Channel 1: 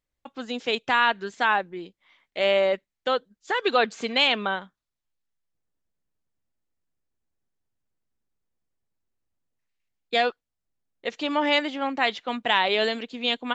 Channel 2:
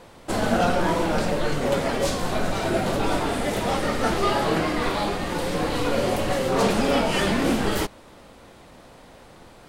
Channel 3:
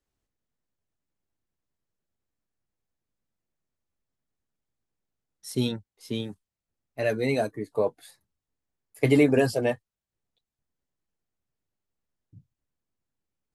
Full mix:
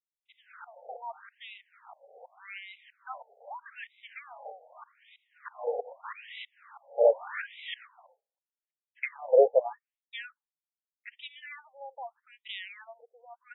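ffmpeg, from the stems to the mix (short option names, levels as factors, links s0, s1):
-filter_complex "[0:a]dynaudnorm=f=280:g=3:m=4.22,volume=0.1[s0];[1:a]aeval=exprs='val(0)*pow(10,-22*if(lt(mod(-3.1*n/s,1),2*abs(-3.1)/1000),1-mod(-3.1*n/s,1)/(2*abs(-3.1)/1000),(mod(-3.1*n/s,1)-2*abs(-3.1)/1000)/(1-2*abs(-3.1)/1000))/20)':c=same,volume=1[s1];[2:a]equalizer=f=490:t=o:w=0.63:g=8.5,volume=1.12,asplit=2[s2][s3];[s3]apad=whole_len=427039[s4];[s1][s4]sidechaingate=range=0.178:threshold=0.00398:ratio=16:detection=peak[s5];[s0][s5][s2]amix=inputs=3:normalize=0,agate=range=0.0224:threshold=0.00398:ratio=3:detection=peak,afftfilt=real='re*between(b*sr/1024,590*pow(2800/590,0.5+0.5*sin(2*PI*0.82*pts/sr))/1.41,590*pow(2800/590,0.5+0.5*sin(2*PI*0.82*pts/sr))*1.41)':imag='im*between(b*sr/1024,590*pow(2800/590,0.5+0.5*sin(2*PI*0.82*pts/sr))/1.41,590*pow(2800/590,0.5+0.5*sin(2*PI*0.82*pts/sr))*1.41)':win_size=1024:overlap=0.75"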